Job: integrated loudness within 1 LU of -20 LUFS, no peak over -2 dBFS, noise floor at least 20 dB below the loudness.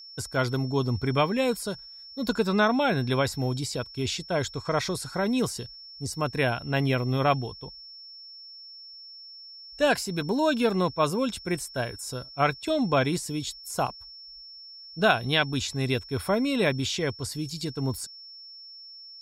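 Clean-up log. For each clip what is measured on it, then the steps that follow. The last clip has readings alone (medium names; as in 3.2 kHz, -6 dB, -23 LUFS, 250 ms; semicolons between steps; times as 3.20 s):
steady tone 5.4 kHz; tone level -43 dBFS; loudness -27.0 LUFS; peak level -7.5 dBFS; loudness target -20.0 LUFS
-> band-stop 5.4 kHz, Q 30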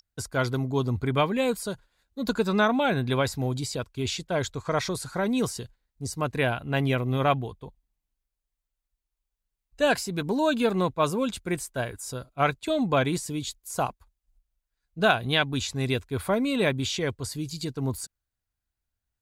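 steady tone not found; loudness -27.0 LUFS; peak level -7.5 dBFS; loudness target -20.0 LUFS
-> trim +7 dB; peak limiter -2 dBFS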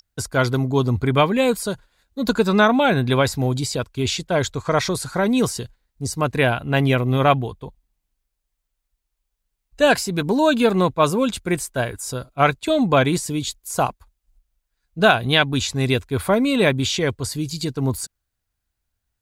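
loudness -20.0 LUFS; peak level -2.0 dBFS; noise floor -79 dBFS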